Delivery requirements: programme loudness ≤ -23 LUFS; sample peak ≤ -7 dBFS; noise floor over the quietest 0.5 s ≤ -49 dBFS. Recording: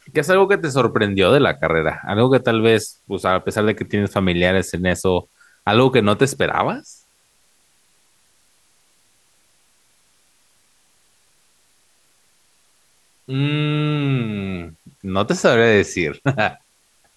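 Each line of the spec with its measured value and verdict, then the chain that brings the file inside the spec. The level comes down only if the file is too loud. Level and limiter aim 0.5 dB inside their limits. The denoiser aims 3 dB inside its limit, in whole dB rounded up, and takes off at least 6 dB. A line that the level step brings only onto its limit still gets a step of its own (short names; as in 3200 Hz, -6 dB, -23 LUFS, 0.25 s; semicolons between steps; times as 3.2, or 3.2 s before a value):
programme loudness -18.0 LUFS: fail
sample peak -2.0 dBFS: fail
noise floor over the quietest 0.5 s -59 dBFS: OK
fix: gain -5.5 dB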